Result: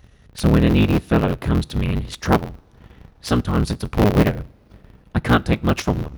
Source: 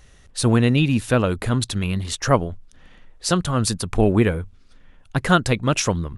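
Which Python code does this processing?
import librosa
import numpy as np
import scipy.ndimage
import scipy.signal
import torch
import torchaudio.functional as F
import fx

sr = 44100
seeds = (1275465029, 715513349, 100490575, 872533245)

y = fx.cycle_switch(x, sr, every=3, mode='inverted')
y = fx.peak_eq(y, sr, hz=7900.0, db=-10.5, octaves=0.74)
y = fx.rev_double_slope(y, sr, seeds[0], early_s=0.47, late_s=4.1, knee_db=-20, drr_db=16.5)
y = fx.transient(y, sr, attack_db=-1, sustain_db=-7)
y = scipy.signal.sosfilt(scipy.signal.butter(2, 42.0, 'highpass', fs=sr, output='sos'), y)
y = fx.low_shelf(y, sr, hz=360.0, db=6.0)
y = y * librosa.db_to_amplitude(-1.5)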